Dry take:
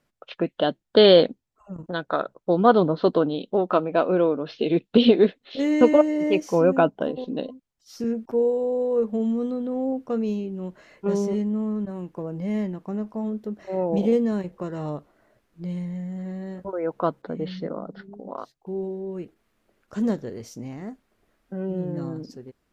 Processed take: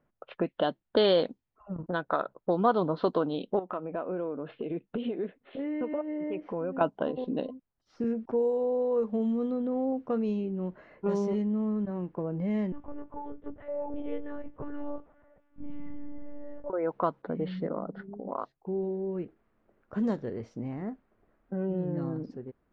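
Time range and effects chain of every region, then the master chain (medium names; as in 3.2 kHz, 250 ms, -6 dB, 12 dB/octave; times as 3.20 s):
3.59–6.81 s: low-pass 3.2 kHz 24 dB/octave + compression 2.5:1, threshold -35 dBFS
12.72–16.70 s: compression 2:1, threshold -38 dBFS + comb 6.8 ms, depth 76% + monotone LPC vocoder at 8 kHz 290 Hz
whole clip: level-controlled noise filter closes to 1.4 kHz, open at -13.5 dBFS; dynamic bell 1 kHz, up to +6 dB, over -36 dBFS, Q 1.5; compression 2:1, threshold -29 dBFS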